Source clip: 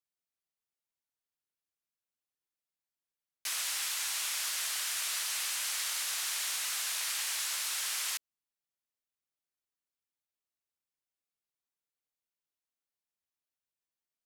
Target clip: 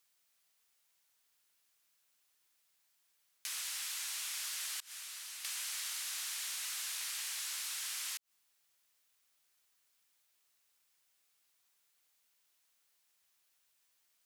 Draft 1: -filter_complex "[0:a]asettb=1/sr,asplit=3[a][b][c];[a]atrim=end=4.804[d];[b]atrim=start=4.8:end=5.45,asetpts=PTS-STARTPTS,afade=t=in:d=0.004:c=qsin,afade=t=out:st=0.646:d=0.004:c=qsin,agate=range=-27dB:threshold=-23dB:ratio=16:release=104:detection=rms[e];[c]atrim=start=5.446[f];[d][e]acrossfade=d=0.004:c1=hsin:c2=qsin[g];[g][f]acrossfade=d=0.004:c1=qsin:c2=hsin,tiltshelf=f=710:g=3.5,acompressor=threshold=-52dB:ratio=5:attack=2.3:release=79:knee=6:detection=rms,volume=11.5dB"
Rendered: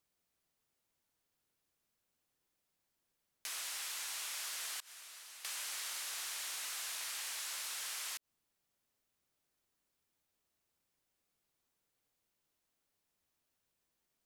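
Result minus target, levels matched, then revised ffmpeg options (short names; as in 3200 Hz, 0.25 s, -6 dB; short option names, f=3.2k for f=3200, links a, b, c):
1000 Hz band +4.5 dB
-filter_complex "[0:a]asettb=1/sr,asplit=3[a][b][c];[a]atrim=end=4.804[d];[b]atrim=start=4.8:end=5.45,asetpts=PTS-STARTPTS,afade=t=in:d=0.004:c=qsin,afade=t=out:st=0.646:d=0.004:c=qsin,agate=range=-27dB:threshold=-23dB:ratio=16:release=104:detection=rms[e];[c]atrim=start=5.446[f];[d][e]acrossfade=d=0.004:c1=hsin:c2=qsin[g];[g][f]acrossfade=d=0.004:c1=qsin:c2=hsin,tiltshelf=f=710:g=-6,acompressor=threshold=-52dB:ratio=5:attack=2.3:release=79:knee=6:detection=rms,volume=11.5dB"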